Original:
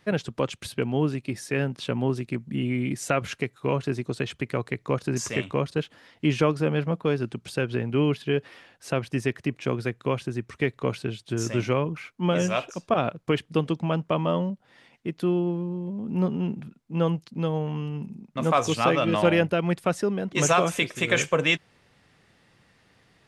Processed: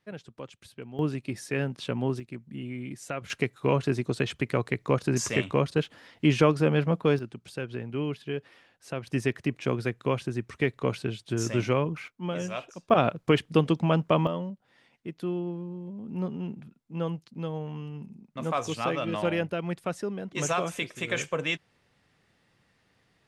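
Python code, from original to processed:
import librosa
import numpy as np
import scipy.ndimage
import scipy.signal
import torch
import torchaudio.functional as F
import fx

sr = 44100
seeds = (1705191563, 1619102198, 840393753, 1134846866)

y = fx.gain(x, sr, db=fx.steps((0.0, -15.0), (0.99, -3.0), (2.2, -10.0), (3.3, 1.0), (7.19, -8.0), (9.07, -1.0), (12.08, -8.5), (12.9, 2.0), (14.27, -7.0)))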